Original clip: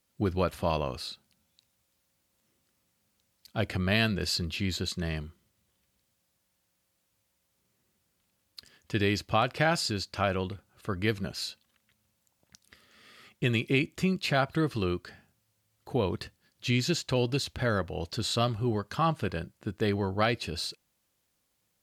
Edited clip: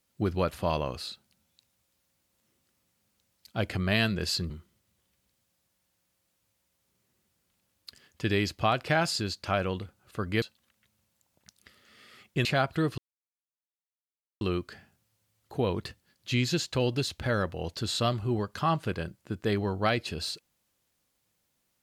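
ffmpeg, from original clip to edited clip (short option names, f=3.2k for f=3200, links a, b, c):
-filter_complex "[0:a]asplit=5[a][b][c][d][e];[a]atrim=end=4.502[f];[b]atrim=start=5.198:end=11.122[g];[c]atrim=start=11.478:end=13.512[h];[d]atrim=start=14.238:end=14.77,asetpts=PTS-STARTPTS,afade=t=out:st=0.528:d=0.004:c=hsin,apad=pad_dur=1.43[i];[e]atrim=start=14.77,asetpts=PTS-STARTPTS,afade=t=in:d=0.004:c=hsin[j];[f][g]acrossfade=d=0.004:c1=hsin:c2=hsin[k];[k][h]acrossfade=d=0.004:c1=hsin:c2=hsin[l];[i][j]concat=n=2:v=0:a=1[m];[l][m]acrossfade=d=0.004:c1=hsin:c2=hsin"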